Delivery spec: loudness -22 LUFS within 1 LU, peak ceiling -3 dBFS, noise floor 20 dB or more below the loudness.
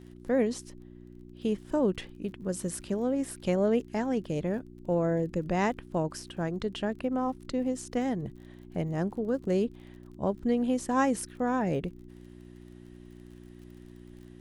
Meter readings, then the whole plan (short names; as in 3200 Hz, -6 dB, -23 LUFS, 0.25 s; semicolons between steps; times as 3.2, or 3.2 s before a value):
ticks 39/s; hum 60 Hz; harmonics up to 360 Hz; hum level -48 dBFS; loudness -30.5 LUFS; peak -14.0 dBFS; loudness target -22.0 LUFS
-> de-click; de-hum 60 Hz, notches 6; gain +8.5 dB